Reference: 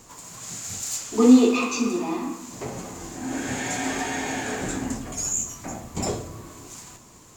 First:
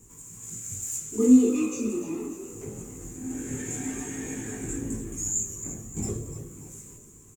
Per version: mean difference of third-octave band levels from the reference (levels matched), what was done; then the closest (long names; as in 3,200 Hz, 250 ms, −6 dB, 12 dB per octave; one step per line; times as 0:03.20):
6.5 dB: high-shelf EQ 2,700 Hz −9 dB
echo with shifted repeats 292 ms, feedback 44%, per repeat +59 Hz, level −11.5 dB
multi-voice chorus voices 6, 0.37 Hz, delay 19 ms, depth 1.3 ms
drawn EQ curve 420 Hz 0 dB, 610 Hz −17 dB, 1,100 Hz −12 dB, 2,400 Hz −6 dB, 4,700 Hz −12 dB, 7,100 Hz +10 dB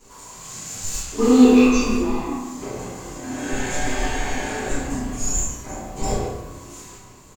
3.5 dB: in parallel at −7 dB: comparator with hysteresis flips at −19 dBFS
on the sum: double-tracking delay 32 ms −5 dB
far-end echo of a speakerphone 140 ms, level −7 dB
rectangular room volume 110 cubic metres, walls mixed, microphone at 3.1 metres
level −11 dB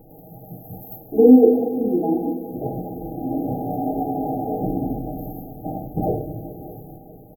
13.5 dB: linear-phase brick-wall band-stop 860–12,000 Hz
comb filter 6.4 ms, depth 57%
echo machine with several playback heads 204 ms, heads second and third, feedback 43%, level −18.5 dB
four-comb reverb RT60 3.6 s, combs from 32 ms, DRR 14.5 dB
level +5 dB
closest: second